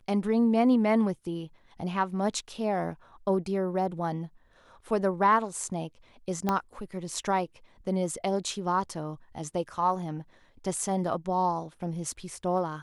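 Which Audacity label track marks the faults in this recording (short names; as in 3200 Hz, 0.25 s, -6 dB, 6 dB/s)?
6.490000	6.490000	pop -13 dBFS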